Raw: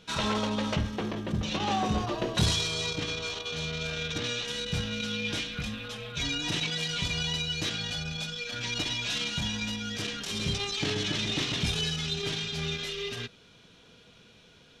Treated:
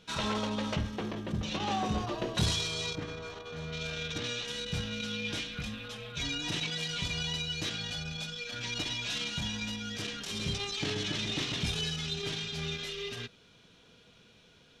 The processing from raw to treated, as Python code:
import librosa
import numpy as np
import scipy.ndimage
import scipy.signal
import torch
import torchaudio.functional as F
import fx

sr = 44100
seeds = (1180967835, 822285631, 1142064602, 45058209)

y = fx.band_shelf(x, sr, hz=5300.0, db=-11.0, octaves=2.5, at=(2.95, 3.72))
y = F.gain(torch.from_numpy(y), -3.5).numpy()